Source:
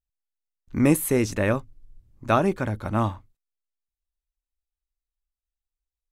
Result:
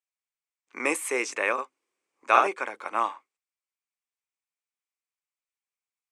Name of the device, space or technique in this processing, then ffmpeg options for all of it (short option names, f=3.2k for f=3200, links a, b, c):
phone speaker on a table: -filter_complex "[0:a]highpass=f=450:w=0.5412,highpass=f=450:w=1.3066,equalizer=f=610:t=q:w=4:g=-7,equalizer=f=1.1k:t=q:w=4:g=5,equalizer=f=2.3k:t=q:w=4:g=9,equalizer=f=4k:t=q:w=4:g=-5,equalizer=f=8.4k:t=q:w=4:g=4,lowpass=f=8.9k:w=0.5412,lowpass=f=8.9k:w=1.3066,asettb=1/sr,asplit=3[a][b][c];[a]atrim=end=1.534[d];[b]atrim=start=1.53:end=2.48,asetpts=PTS-STARTPTS,afade=t=in:d=0.004:c=qsin,afade=t=out:st=0.946:d=0.004:c=qsin,asplit=2[e][f];[f]adelay=50,volume=-2dB[g];[e][g]amix=inputs=2:normalize=0,atrim=end_sample=41895[h];[c]atrim=start=2.476[i];[d][h]acrossfade=d=0.004:c1=hsin:c2=qsin[j];[j][i]acrossfade=d=0.004:c1=qsin:c2=hsin"